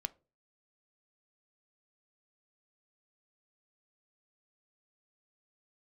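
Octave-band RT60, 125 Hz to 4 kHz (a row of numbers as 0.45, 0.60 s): 0.50, 0.40, 0.40, 0.25, 0.25, 0.20 s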